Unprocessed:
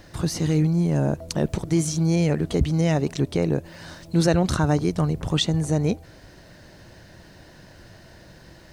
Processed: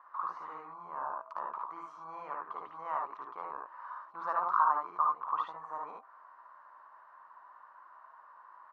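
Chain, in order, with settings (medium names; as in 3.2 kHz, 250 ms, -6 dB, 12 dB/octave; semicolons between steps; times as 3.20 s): Butterworth band-pass 1.1 kHz, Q 4.3; on a send: multi-tap echo 57/74 ms -4/-3.5 dB; on the sum: trim +8.5 dB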